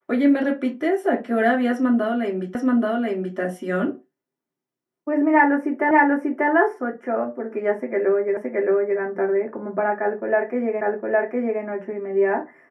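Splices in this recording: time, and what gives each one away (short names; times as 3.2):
2.55 repeat of the last 0.83 s
5.91 repeat of the last 0.59 s
8.37 repeat of the last 0.62 s
10.81 repeat of the last 0.81 s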